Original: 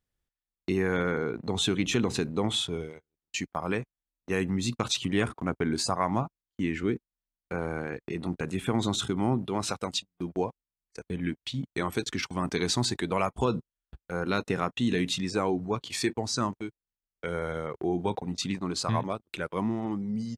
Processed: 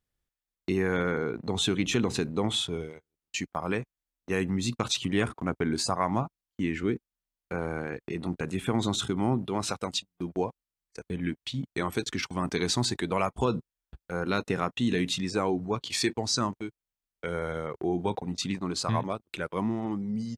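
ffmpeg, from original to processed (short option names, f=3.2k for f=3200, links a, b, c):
-filter_complex "[0:a]asettb=1/sr,asplit=3[a][b][c];[a]atrim=end=15.824[d];[b]atrim=start=15.82:end=16.39,asetpts=PTS-STARTPTS,afade=t=in:d=0.004:c=qsin,afade=t=out:st=0.566:d=0.004:c=qsin,equalizer=f=4.5k:w=0.79:g=4.5[e];[c]atrim=start=16.386[f];[d][e]acrossfade=d=0.004:c1=hsin:c2=qsin[g];[g][f]acrossfade=d=0.004:c1=qsin:c2=hsin"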